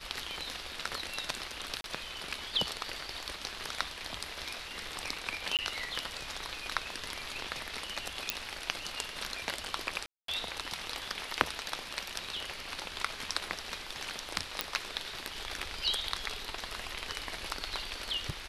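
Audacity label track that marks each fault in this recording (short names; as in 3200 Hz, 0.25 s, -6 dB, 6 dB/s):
1.810000	1.840000	gap 32 ms
5.570000	5.590000	gap 18 ms
8.300000	8.300000	pop -11 dBFS
10.060000	10.280000	gap 0.223 s
14.610000	14.610000	pop -10 dBFS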